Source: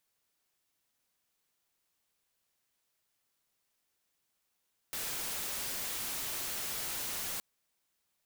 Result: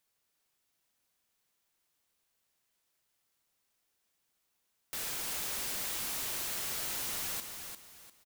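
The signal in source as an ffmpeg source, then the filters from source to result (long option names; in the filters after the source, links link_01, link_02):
-f lavfi -i "anoisesrc=color=white:amplitude=0.0231:duration=2.47:sample_rate=44100:seed=1"
-af "aecho=1:1:349|698|1047|1396:0.447|0.134|0.0402|0.0121"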